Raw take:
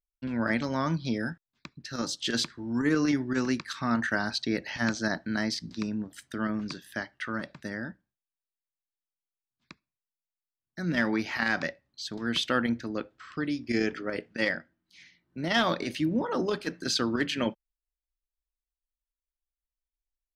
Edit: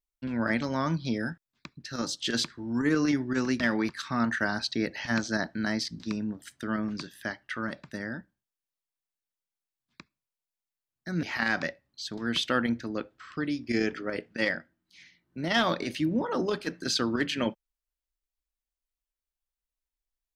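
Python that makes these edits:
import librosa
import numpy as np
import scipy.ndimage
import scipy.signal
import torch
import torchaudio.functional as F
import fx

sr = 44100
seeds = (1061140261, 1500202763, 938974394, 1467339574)

y = fx.edit(x, sr, fx.move(start_s=10.94, length_s=0.29, to_s=3.6), tone=tone)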